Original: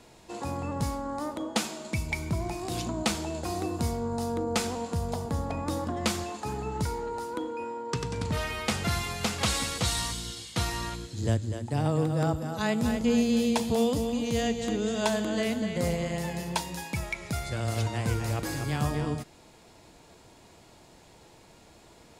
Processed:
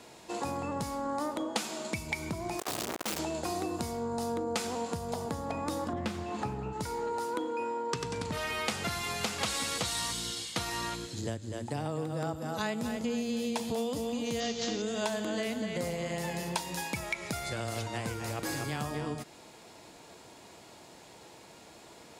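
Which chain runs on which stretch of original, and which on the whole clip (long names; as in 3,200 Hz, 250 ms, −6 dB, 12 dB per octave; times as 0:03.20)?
0:02.59–0:03.19: sign of each sample alone + saturating transformer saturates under 340 Hz
0:05.93–0:06.73: bass and treble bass +11 dB, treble −9 dB + upward compression, threshold −29 dBFS + highs frequency-modulated by the lows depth 0.24 ms
0:14.40–0:14.82: variable-slope delta modulation 32 kbit/s + bass and treble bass 0 dB, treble +14 dB
whole clip: downward compressor 5 to 1, threshold −32 dBFS; high-pass filter 230 Hz 6 dB per octave; level +3.5 dB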